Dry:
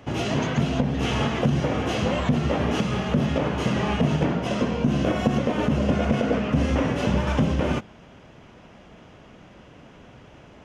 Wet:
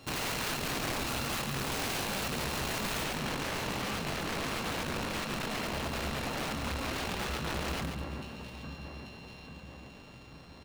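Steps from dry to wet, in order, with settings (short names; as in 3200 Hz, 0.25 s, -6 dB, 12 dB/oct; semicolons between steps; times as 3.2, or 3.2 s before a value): sample sorter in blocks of 32 samples; bell 3900 Hz +6.5 dB 1.2 oct; notches 50/100/150/200/250/300 Hz; echo with dull and thin repeats by turns 0.419 s, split 2100 Hz, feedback 71%, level -12.5 dB; negative-ratio compressor -25 dBFS, ratio -1; notch 1400 Hz, Q 8.8; wrapped overs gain 21 dB; high shelf 6400 Hz -3.5 dB, from 3.04 s -11.5 dB; echo 0.14 s -6.5 dB; gain -7.5 dB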